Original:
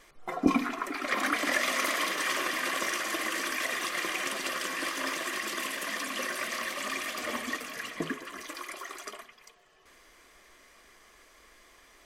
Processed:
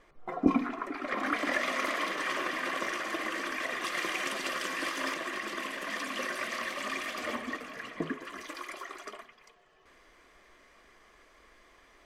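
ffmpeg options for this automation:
-af "asetnsamples=n=441:p=0,asendcmd='1.27 lowpass f 2100;3.84 lowpass f 5200;5.14 lowpass f 2200;5.9 lowpass f 3700;7.35 lowpass f 1600;8.21 lowpass f 4200;8.84 lowpass f 2500',lowpass=f=1200:p=1"

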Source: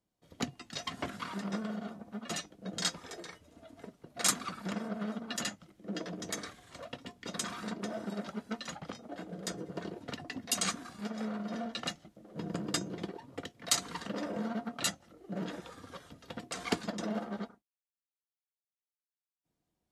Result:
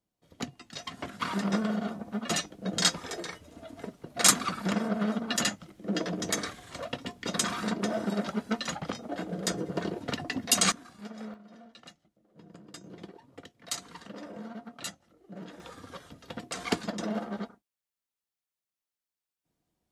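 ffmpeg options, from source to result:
-af "asetnsamples=n=441:p=0,asendcmd='1.21 volume volume 8dB;10.72 volume volume -4dB;11.34 volume volume -14dB;12.84 volume volume -6dB;15.6 volume volume 3dB',volume=0.891"

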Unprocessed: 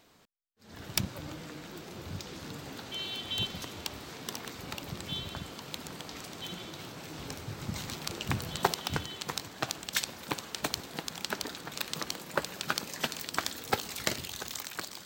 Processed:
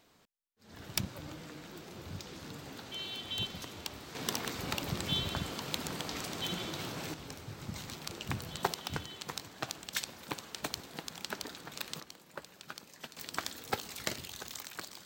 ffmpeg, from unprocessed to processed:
-af "asetnsamples=n=441:p=0,asendcmd='4.15 volume volume 4dB;7.14 volume volume -5dB;12 volume volume -14.5dB;13.17 volume volume -5dB',volume=0.668"

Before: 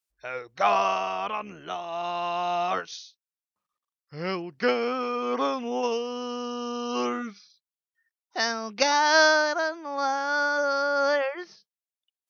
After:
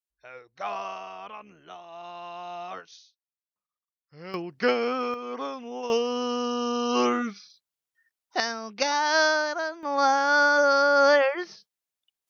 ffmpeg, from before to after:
-af "asetnsamples=n=441:p=0,asendcmd='4.34 volume volume 0.5dB;5.14 volume volume -7dB;5.9 volume volume 4.5dB;8.4 volume volume -3dB;9.83 volume volume 5dB',volume=0.299"

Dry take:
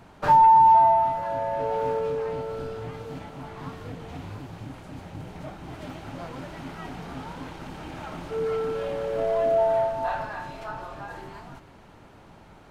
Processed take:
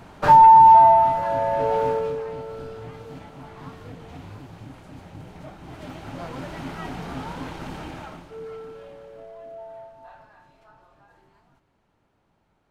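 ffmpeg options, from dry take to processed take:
-af "volume=3.76,afade=t=out:st=1.76:d=0.49:silence=0.421697,afade=t=in:st=5.57:d=0.99:silence=0.473151,afade=t=out:st=7.75:d=0.51:silence=0.237137,afade=t=out:st=8.26:d=1.07:silence=0.316228"

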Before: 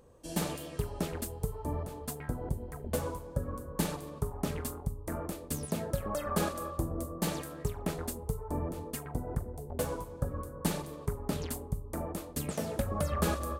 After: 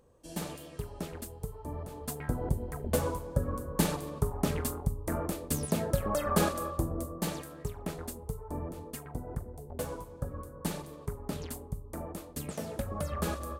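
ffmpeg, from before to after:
-af "volume=1.58,afade=t=in:st=1.74:d=0.64:silence=0.375837,afade=t=out:st=6.41:d=1.05:silence=0.446684"

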